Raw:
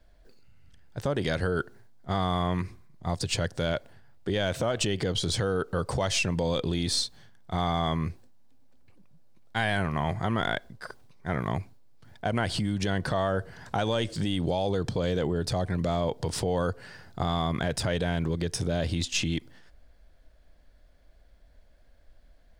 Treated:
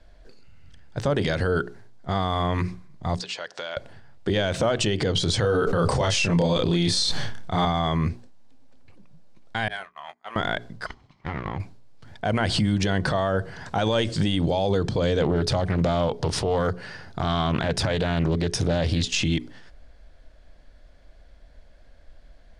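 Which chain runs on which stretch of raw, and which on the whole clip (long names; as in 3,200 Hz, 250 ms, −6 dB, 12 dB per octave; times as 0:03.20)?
0:03.20–0:03.77: band-pass filter 700–5,700 Hz + downward compressor, threshold −36 dBFS
0:05.41–0:07.65: double-tracking delay 29 ms −2 dB + level that may fall only so fast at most 33 dB per second
0:09.68–0:10.36: noise gate −26 dBFS, range −38 dB + high-pass filter 770 Hz + double-tracking delay 21 ms −11 dB
0:10.86–0:11.60: lower of the sound and its delayed copy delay 0.96 ms + low-pass filter 4,400 Hz + downward compressor 12 to 1, threshold −32 dBFS
0:15.22–0:19.07: notch filter 7,600 Hz, Q 9.5 + highs frequency-modulated by the lows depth 0.3 ms
whole clip: low-pass filter 7,700 Hz 12 dB per octave; mains-hum notches 60/120/180/240/300/360/420 Hz; brickwall limiter −21 dBFS; level +7.5 dB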